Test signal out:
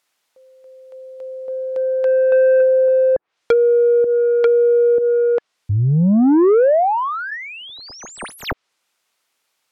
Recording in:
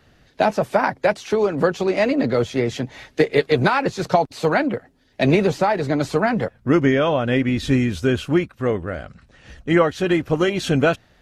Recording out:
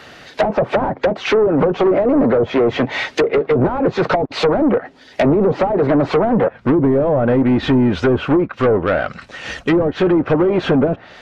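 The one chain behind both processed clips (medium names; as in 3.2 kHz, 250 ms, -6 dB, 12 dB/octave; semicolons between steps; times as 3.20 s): band-stop 1.7 kHz, Q 24; overdrive pedal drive 27 dB, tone 4.2 kHz, clips at -2 dBFS; low-pass that closes with the level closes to 400 Hz, closed at -6.5 dBFS; sine folder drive 3 dB, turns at -3 dBFS; trim -6.5 dB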